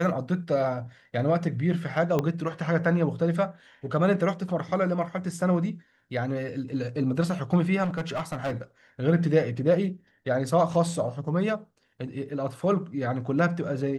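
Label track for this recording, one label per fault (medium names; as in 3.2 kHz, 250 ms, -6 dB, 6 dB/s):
2.190000	2.190000	pop -13 dBFS
7.830000	8.560000	clipped -25 dBFS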